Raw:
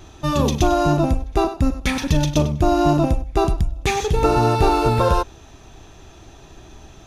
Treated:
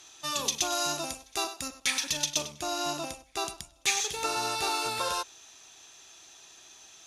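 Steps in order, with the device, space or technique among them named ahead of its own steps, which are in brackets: piezo pickup straight into a mixer (LPF 9000 Hz 12 dB/oct; differentiator); 0.72–1.68 high shelf 4100 Hz +6 dB; gain +5.5 dB

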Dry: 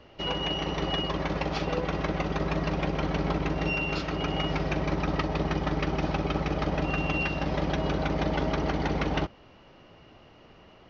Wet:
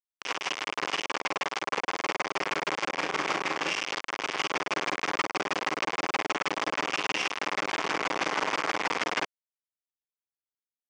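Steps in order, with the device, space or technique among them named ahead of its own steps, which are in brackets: hand-held game console (bit-crush 4-bit; speaker cabinet 430–5900 Hz, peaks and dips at 600 Hz -5 dB, 1100 Hz +4 dB, 2200 Hz +4 dB, 4000 Hz -7 dB); 2.89–3.74 doubler 34 ms -8 dB

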